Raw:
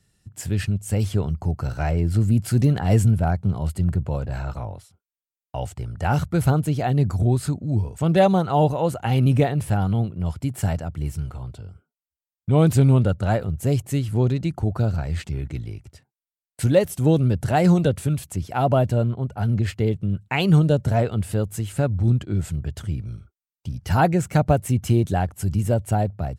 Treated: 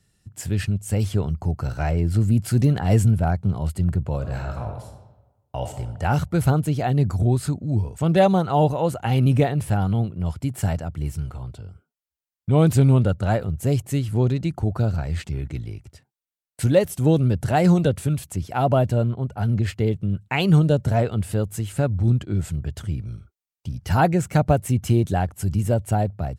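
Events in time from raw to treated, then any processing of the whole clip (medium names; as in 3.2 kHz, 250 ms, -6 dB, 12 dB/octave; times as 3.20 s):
4.16–5.76 s: reverb throw, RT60 1.1 s, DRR 4 dB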